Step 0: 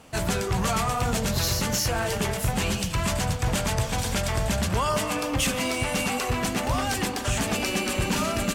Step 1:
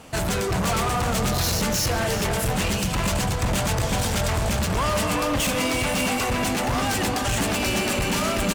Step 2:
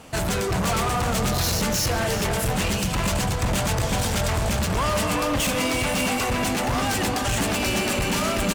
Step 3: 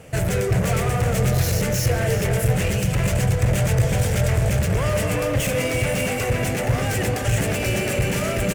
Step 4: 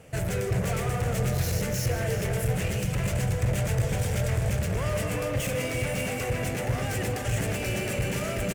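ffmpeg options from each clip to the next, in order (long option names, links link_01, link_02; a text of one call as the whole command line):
ffmpeg -i in.wav -filter_complex "[0:a]asoftclip=type=hard:threshold=-27dB,asplit=2[link_01][link_02];[link_02]adelay=384.8,volume=-6dB,highshelf=frequency=4000:gain=-8.66[link_03];[link_01][link_03]amix=inputs=2:normalize=0,volume=5.5dB" out.wav
ffmpeg -i in.wav -af anull out.wav
ffmpeg -i in.wav -af "equalizer=frequency=125:width_type=o:width=1:gain=11,equalizer=frequency=250:width_type=o:width=1:gain=-7,equalizer=frequency=500:width_type=o:width=1:gain=8,equalizer=frequency=1000:width_type=o:width=1:gain=-10,equalizer=frequency=2000:width_type=o:width=1:gain=5,equalizer=frequency=4000:width_type=o:width=1:gain=-8" out.wav
ffmpeg -i in.wav -af "aecho=1:1:154:0.237,volume=-7dB" out.wav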